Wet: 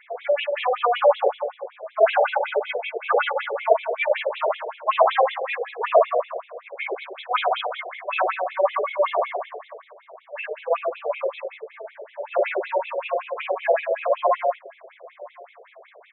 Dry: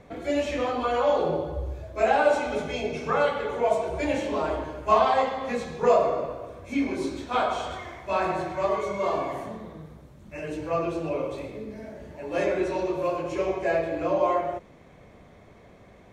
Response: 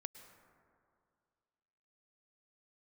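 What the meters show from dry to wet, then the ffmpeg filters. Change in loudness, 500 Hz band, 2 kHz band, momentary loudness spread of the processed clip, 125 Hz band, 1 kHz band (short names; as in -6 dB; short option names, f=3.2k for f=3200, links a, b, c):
+3.0 dB, +3.0 dB, +5.0 dB, 18 LU, under -40 dB, +3.5 dB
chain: -filter_complex "[0:a]highshelf=f=2.7k:g=7,asplit=2[a][b];[b]alimiter=limit=-17dB:level=0:latency=1,volume=-1dB[c];[a][c]amix=inputs=2:normalize=0,asplit=2[d][e];[e]adelay=1005,lowpass=f=890:p=1,volume=-21.5dB,asplit=2[f][g];[g]adelay=1005,lowpass=f=890:p=1,volume=0.35,asplit=2[h][i];[i]adelay=1005,lowpass=f=890:p=1,volume=0.35[j];[d][f][h][j]amix=inputs=4:normalize=0,aresample=8000,aresample=44100,afftfilt=real='re*between(b*sr/1024,530*pow(3000/530,0.5+0.5*sin(2*PI*5.3*pts/sr))/1.41,530*pow(3000/530,0.5+0.5*sin(2*PI*5.3*pts/sr))*1.41)':imag='im*between(b*sr/1024,530*pow(3000/530,0.5+0.5*sin(2*PI*5.3*pts/sr))/1.41,530*pow(3000/530,0.5+0.5*sin(2*PI*5.3*pts/sr))*1.41)':win_size=1024:overlap=0.75,volume=4dB"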